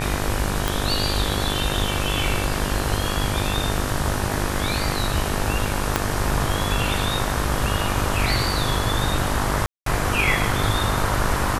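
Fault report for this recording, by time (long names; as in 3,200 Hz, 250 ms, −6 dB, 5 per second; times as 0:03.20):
mains buzz 50 Hz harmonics 37 −27 dBFS
0:00.68: click
0:05.96: click −3 dBFS
0:09.66–0:09.86: drop-out 203 ms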